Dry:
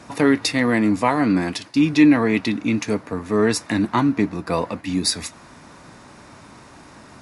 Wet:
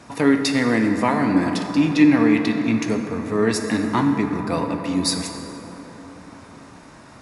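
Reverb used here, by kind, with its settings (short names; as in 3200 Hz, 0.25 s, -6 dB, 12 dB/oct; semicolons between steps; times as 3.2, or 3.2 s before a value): plate-style reverb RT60 4.6 s, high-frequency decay 0.35×, DRR 4 dB; gain -2 dB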